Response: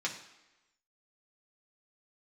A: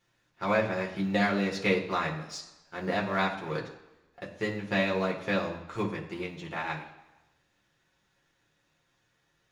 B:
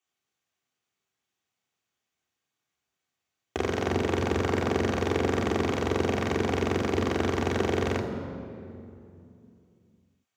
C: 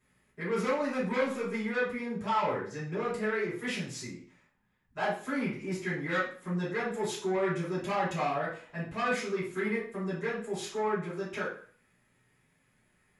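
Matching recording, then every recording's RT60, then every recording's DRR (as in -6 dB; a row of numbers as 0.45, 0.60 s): A; 1.0, 2.6, 0.50 s; -2.5, -2.5, -12.5 dB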